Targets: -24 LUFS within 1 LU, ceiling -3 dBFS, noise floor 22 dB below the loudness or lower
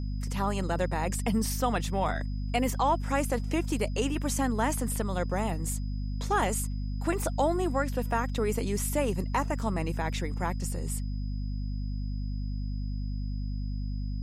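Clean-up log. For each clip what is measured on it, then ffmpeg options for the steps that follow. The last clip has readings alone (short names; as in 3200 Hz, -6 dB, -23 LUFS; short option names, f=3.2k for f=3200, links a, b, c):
hum 50 Hz; harmonics up to 250 Hz; hum level -30 dBFS; steady tone 5000 Hz; tone level -57 dBFS; loudness -30.5 LUFS; peak -13.5 dBFS; loudness target -24.0 LUFS
-> -af "bandreject=f=50:t=h:w=4,bandreject=f=100:t=h:w=4,bandreject=f=150:t=h:w=4,bandreject=f=200:t=h:w=4,bandreject=f=250:t=h:w=4"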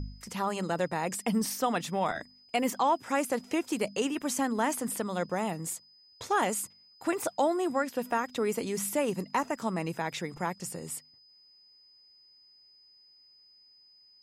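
hum none; steady tone 5000 Hz; tone level -57 dBFS
-> -af "bandreject=f=5k:w=30"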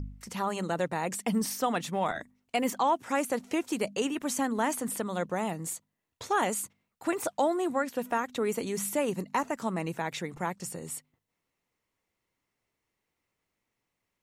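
steady tone none; loudness -31.5 LUFS; peak -15.5 dBFS; loudness target -24.0 LUFS
-> -af "volume=7.5dB"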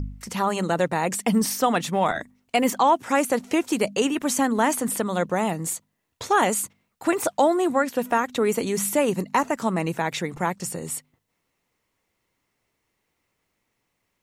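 loudness -24.0 LUFS; peak -8.0 dBFS; noise floor -76 dBFS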